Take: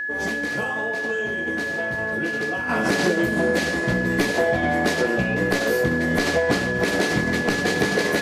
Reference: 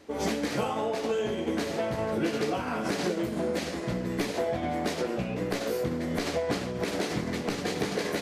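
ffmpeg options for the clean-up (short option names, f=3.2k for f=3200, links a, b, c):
-af "bandreject=f=1.7k:w=30,asetnsamples=n=441:p=0,asendcmd='2.69 volume volume -8dB',volume=0dB"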